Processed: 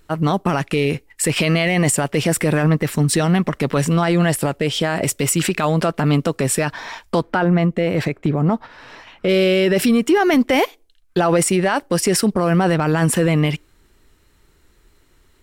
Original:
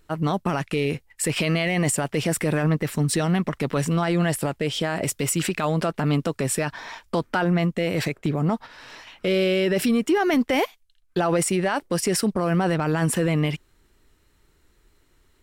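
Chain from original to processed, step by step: 7.22–9.29 high shelf 3200 Hz -11 dB; on a send: ladder high-pass 290 Hz, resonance 40% + reverb RT60 0.35 s, pre-delay 3 ms, DRR 28 dB; on the sum: gain +5.5 dB

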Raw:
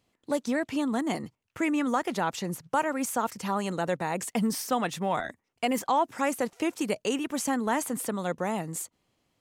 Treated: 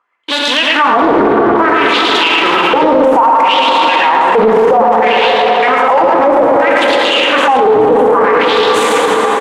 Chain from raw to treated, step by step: notches 60/120/180/240/300/360/420/480 Hz; harmonic-percussive split harmonic +9 dB; fifteen-band EQ 160 Hz -9 dB, 400 Hz +8 dB, 1000 Hz +10 dB, 4000 Hz -6 dB; reverse; upward compressor, threshold -26 dBFS; reverse; sample leveller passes 5; wah 0.61 Hz 410–3700 Hz, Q 6.5; on a send: echo 0.112 s -3 dB; on the sum: plate-style reverb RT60 4.3 s, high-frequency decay 0.5×, DRR 1 dB; maximiser +22 dB; Doppler distortion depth 0.35 ms; gain -1 dB

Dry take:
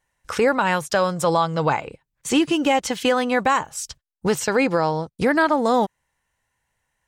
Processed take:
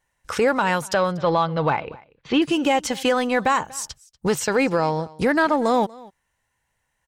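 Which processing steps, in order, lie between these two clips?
0.94–2.42 steep low-pass 4200 Hz 36 dB/oct; in parallel at -9.5 dB: soft clip -21 dBFS, distortion -8 dB; on the sum: echo 0.239 s -22.5 dB; gain -2 dB

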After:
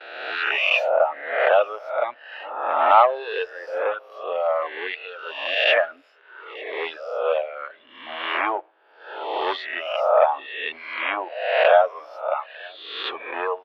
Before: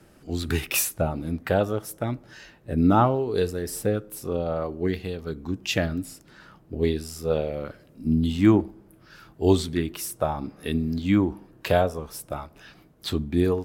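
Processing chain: spectral swells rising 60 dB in 1.19 s; on a send: echo 0.897 s -21.5 dB; on the sum: gate with hold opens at -36 dBFS; in parallel at -7.5 dB: wavefolder -16.5 dBFS; on the sum: elliptic band-pass 580–3000 Hz, stop band 50 dB; reverb removal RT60 1.9 s; gain +6 dB

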